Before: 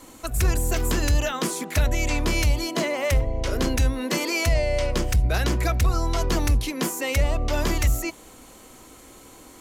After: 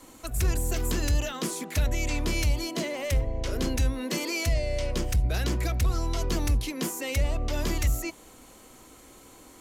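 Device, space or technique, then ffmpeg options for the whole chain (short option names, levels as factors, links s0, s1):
one-band saturation: -filter_complex "[0:a]acrossover=split=530|2200[s0][s1][s2];[s1]asoftclip=type=tanh:threshold=0.02[s3];[s0][s3][s2]amix=inputs=3:normalize=0,volume=0.631"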